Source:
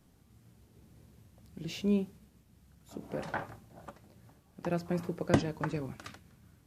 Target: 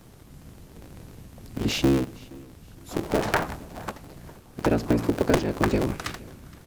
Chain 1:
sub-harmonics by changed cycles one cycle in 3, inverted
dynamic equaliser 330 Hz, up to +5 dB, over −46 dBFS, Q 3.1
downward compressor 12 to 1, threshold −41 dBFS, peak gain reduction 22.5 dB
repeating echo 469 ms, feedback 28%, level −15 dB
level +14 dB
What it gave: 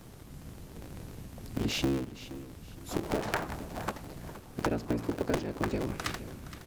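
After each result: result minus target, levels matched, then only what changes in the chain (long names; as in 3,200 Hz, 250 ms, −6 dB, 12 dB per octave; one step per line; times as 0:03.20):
downward compressor: peak gain reduction +9 dB; echo-to-direct +9 dB
change: downward compressor 12 to 1, threshold −31 dBFS, peak gain reduction 13.5 dB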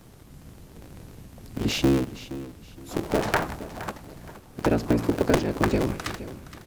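echo-to-direct +9 dB
change: repeating echo 469 ms, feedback 28%, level −24 dB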